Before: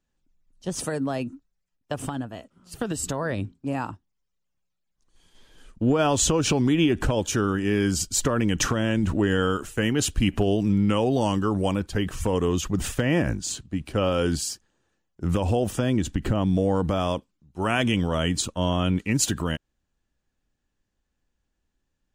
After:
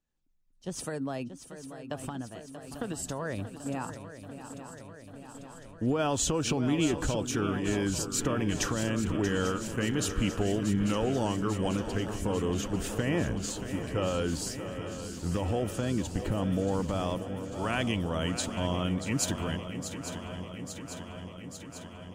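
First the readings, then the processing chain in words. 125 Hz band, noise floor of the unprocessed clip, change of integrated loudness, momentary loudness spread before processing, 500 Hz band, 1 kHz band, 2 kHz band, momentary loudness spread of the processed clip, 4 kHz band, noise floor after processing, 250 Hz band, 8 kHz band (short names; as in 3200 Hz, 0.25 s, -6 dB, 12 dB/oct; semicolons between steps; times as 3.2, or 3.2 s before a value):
-6.0 dB, -78 dBFS, -6.5 dB, 10 LU, -6.0 dB, -6.0 dB, -6.0 dB, 15 LU, -6.0 dB, -48 dBFS, -6.0 dB, -6.0 dB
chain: swung echo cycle 0.844 s, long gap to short 3:1, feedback 70%, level -11 dB; gain -7 dB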